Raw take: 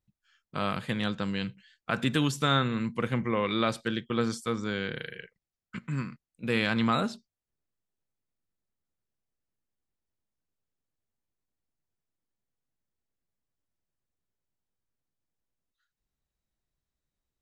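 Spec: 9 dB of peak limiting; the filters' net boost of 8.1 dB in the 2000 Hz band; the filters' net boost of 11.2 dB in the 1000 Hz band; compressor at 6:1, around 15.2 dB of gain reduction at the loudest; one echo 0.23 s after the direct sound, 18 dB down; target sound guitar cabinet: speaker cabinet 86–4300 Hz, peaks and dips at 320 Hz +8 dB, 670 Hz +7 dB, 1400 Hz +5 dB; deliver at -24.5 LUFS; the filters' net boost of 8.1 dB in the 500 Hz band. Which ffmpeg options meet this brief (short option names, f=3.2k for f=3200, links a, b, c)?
-af "equalizer=f=500:t=o:g=3.5,equalizer=f=1k:t=o:g=8.5,equalizer=f=2k:t=o:g=4,acompressor=threshold=-32dB:ratio=6,alimiter=limit=-23dB:level=0:latency=1,highpass=86,equalizer=f=320:t=q:w=4:g=8,equalizer=f=670:t=q:w=4:g=7,equalizer=f=1.4k:t=q:w=4:g=5,lowpass=f=4.3k:w=0.5412,lowpass=f=4.3k:w=1.3066,aecho=1:1:230:0.126,volume=11.5dB"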